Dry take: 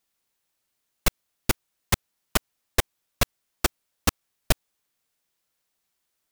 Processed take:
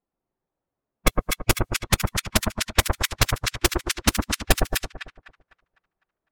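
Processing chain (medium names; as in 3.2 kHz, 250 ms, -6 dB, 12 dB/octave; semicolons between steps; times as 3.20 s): coarse spectral quantiser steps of 15 dB; two-band feedback delay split 1.4 kHz, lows 112 ms, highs 252 ms, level -3 dB; level-controlled noise filter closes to 750 Hz, open at -22.5 dBFS; trim +4 dB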